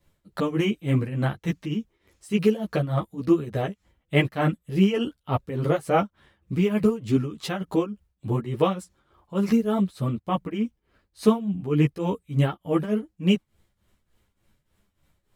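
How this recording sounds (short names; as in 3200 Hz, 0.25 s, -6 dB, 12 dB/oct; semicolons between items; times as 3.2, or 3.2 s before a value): tremolo triangle 3.4 Hz, depth 85%; a shimmering, thickened sound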